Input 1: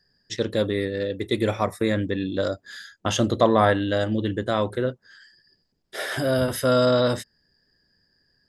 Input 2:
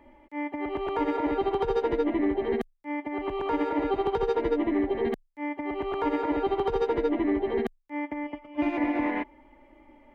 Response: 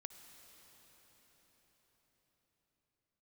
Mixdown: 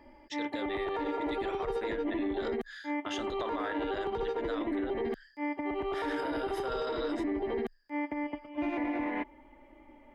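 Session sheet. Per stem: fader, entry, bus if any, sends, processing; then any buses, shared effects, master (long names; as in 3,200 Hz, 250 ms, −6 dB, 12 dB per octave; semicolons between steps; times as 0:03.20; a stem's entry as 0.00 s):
−5.0 dB, 0.00 s, no send, resonant band-pass 2,000 Hz, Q 0.88
−1.0 dB, 0.00 s, no send, no processing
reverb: not used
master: brickwall limiter −25.5 dBFS, peak gain reduction 11 dB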